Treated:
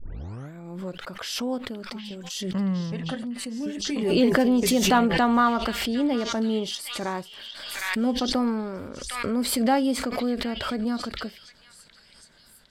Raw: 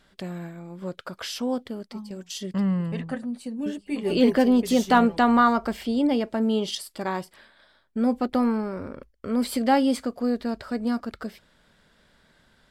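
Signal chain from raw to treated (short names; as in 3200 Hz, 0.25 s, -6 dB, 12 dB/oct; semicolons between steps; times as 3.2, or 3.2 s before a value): tape start at the beginning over 0.53 s; delay with a stepping band-pass 0.759 s, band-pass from 2700 Hz, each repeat 0.7 oct, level -5.5 dB; backwards sustainer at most 39 dB/s; gain -2 dB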